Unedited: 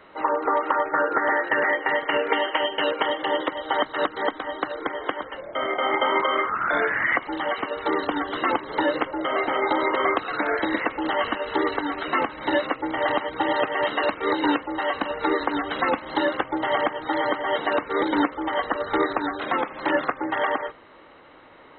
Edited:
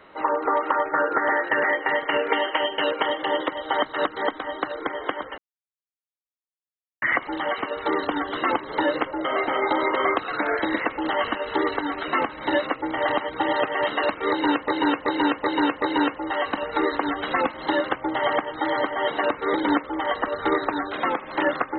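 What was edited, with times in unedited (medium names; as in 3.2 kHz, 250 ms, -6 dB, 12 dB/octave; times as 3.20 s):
5.38–7.02 s: mute
14.30–14.68 s: loop, 5 plays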